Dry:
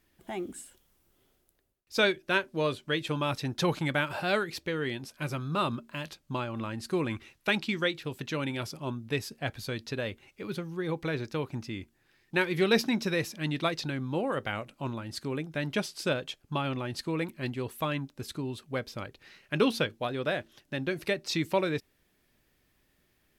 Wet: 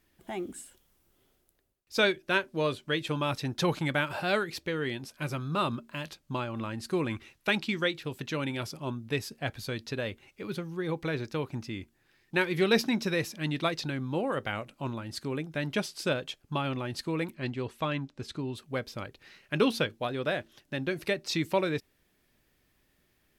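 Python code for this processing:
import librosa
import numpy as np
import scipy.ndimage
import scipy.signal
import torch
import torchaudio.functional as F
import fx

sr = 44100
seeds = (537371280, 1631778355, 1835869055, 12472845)

y = fx.lowpass(x, sr, hz=6300.0, slope=12, at=(17.35, 18.55))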